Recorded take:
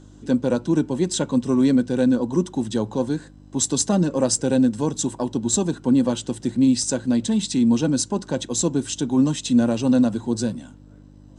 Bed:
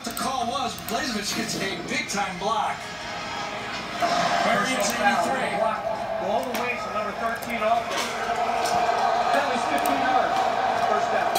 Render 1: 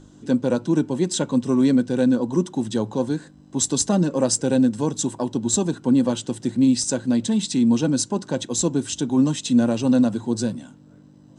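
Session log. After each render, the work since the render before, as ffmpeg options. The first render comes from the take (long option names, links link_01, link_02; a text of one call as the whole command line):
ffmpeg -i in.wav -af "bandreject=frequency=50:width_type=h:width=4,bandreject=frequency=100:width_type=h:width=4" out.wav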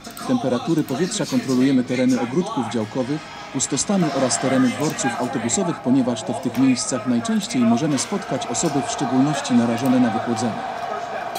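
ffmpeg -i in.wav -i bed.wav -filter_complex "[1:a]volume=-4.5dB[link_01];[0:a][link_01]amix=inputs=2:normalize=0" out.wav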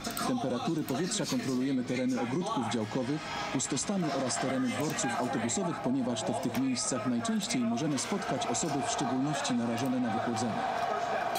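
ffmpeg -i in.wav -af "alimiter=limit=-15.5dB:level=0:latency=1:release=16,acompressor=threshold=-28dB:ratio=6" out.wav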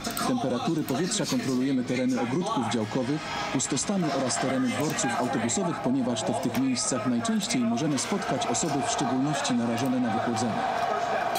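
ffmpeg -i in.wav -af "volume=4.5dB" out.wav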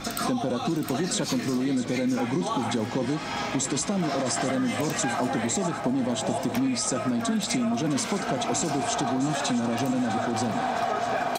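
ffmpeg -i in.wav -af "aecho=1:1:656|1312|1968|2624|3280|3936:0.211|0.12|0.0687|0.0391|0.0223|0.0127" out.wav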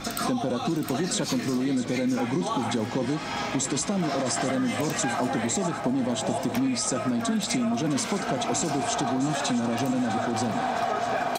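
ffmpeg -i in.wav -af anull out.wav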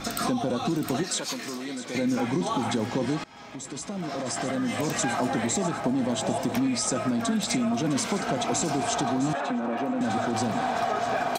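ffmpeg -i in.wav -filter_complex "[0:a]asettb=1/sr,asplit=3[link_01][link_02][link_03];[link_01]atrim=end=1.034[link_04];[link_02]atrim=start=1.03:end=1.95,asetpts=PTS-STARTPTS,afade=type=in:duration=0.004:curve=qsin,afade=type=out:start_time=0.916:duration=0.004:curve=qsin,highpass=frequency=790:poles=1[link_05];[link_03]atrim=start=1.946[link_06];[link_04][link_05]acrossfade=duration=0.004:curve1=hsin:curve2=qsin[link_07];[link_07][link_06]acrossfade=duration=0.004:curve1=qsin:curve2=hsin,asettb=1/sr,asplit=3[link_08][link_09][link_10];[link_08]atrim=end=9.334[link_11];[link_09]atrim=start=9.33:end=10.01,asetpts=PTS-STARTPTS,afade=type=in:duration=0.004:curve=qsin,afade=type=out:start_time=0.676:duration=0.004:curve=qsin,acrossover=split=200 2600:gain=0.0708 1 0.112[link_12][link_13][link_14];[link_12][link_13][link_14]amix=inputs=3:normalize=0[link_15];[link_10]atrim=start=10.006[link_16];[link_11][link_15]acrossfade=duration=0.004:curve1=hsin:curve2=qsin[link_17];[link_17][link_16]acrossfade=duration=0.004:curve1=qsin:curve2=hsin,asplit=2[link_18][link_19];[link_18]atrim=end=3.24,asetpts=PTS-STARTPTS,afade=type=out:start_time=3.236:duration=0.004:curve=hsin:silence=0.0794328[link_20];[link_19]atrim=start=3.24,asetpts=PTS-STARTPTS,afade=type=in:duration=1.76:silence=0.0794328[link_21];[link_20][link_21]concat=n=2:v=0:a=1" out.wav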